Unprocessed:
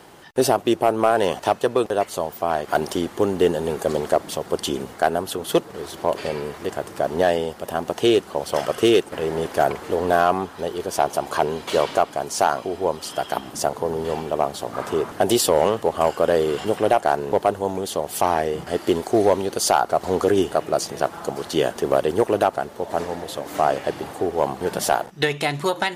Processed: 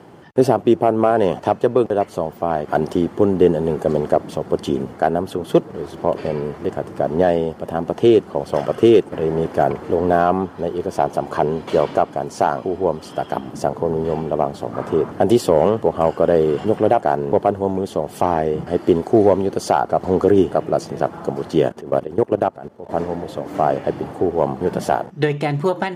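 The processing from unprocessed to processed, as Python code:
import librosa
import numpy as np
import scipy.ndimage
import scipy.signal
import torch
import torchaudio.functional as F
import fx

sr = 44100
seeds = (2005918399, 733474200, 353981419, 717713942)

y = fx.level_steps(x, sr, step_db=18, at=(21.69, 22.89))
y = scipy.signal.sosfilt(scipy.signal.butter(2, 120.0, 'highpass', fs=sr, output='sos'), y)
y = fx.tilt_eq(y, sr, slope=-3.5)
y = fx.notch(y, sr, hz=3800.0, q=18.0)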